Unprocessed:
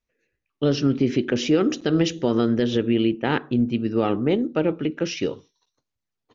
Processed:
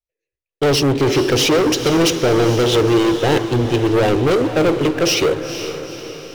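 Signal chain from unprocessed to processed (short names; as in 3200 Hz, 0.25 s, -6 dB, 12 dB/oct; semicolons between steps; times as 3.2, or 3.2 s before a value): fixed phaser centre 530 Hz, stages 4; sample leveller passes 5; diffused feedback echo 0.467 s, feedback 53%, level -10 dB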